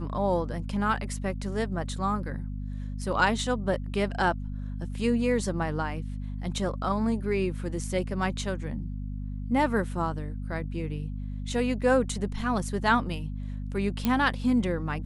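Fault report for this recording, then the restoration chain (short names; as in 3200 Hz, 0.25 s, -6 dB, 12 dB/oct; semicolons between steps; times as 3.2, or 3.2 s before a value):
hum 50 Hz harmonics 5 -34 dBFS
14.05 pop -12 dBFS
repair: de-click; de-hum 50 Hz, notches 5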